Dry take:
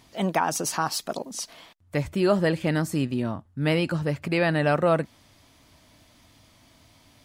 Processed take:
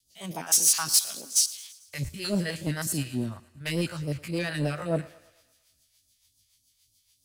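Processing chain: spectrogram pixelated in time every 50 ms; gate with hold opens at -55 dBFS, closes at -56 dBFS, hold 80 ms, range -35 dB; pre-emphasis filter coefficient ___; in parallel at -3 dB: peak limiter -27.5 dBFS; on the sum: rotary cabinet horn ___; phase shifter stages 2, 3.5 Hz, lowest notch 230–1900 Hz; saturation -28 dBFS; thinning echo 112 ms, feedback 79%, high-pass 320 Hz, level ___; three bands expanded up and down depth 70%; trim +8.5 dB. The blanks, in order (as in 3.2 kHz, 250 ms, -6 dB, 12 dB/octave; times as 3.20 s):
0.8, 7 Hz, -18 dB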